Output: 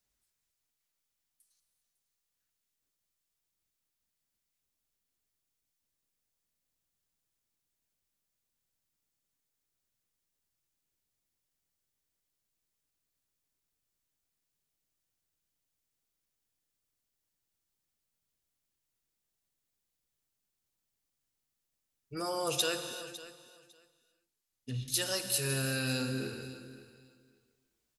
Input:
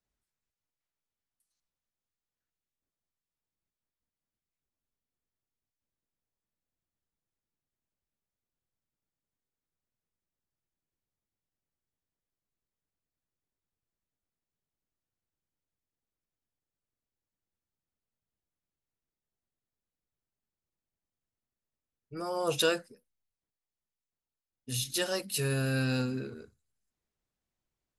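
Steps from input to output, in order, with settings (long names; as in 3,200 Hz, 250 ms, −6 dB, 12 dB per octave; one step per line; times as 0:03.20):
0:22.82–0:24.88: treble cut that deepens with the level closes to 990 Hz, closed at −35.5 dBFS
high-shelf EQ 2,500 Hz +10.5 dB
downward compressor 2.5 to 1, threshold −32 dBFS, peak gain reduction 10.5 dB
on a send: repeating echo 553 ms, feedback 17%, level −16.5 dB
on the sum: reverb whose tail is shaped and stops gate 420 ms flat, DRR 8 dB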